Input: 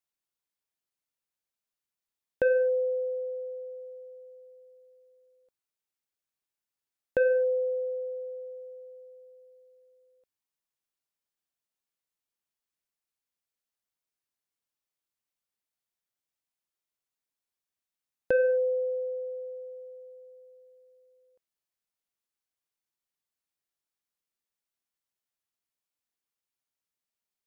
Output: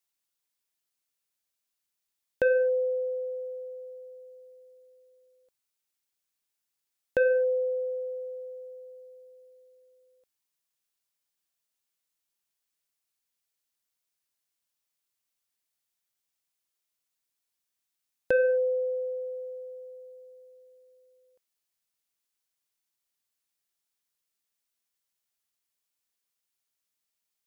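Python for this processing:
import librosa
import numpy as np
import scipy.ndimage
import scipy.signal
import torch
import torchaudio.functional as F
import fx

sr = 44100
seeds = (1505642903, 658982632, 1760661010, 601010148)

y = fx.high_shelf(x, sr, hz=2200.0, db=7.5)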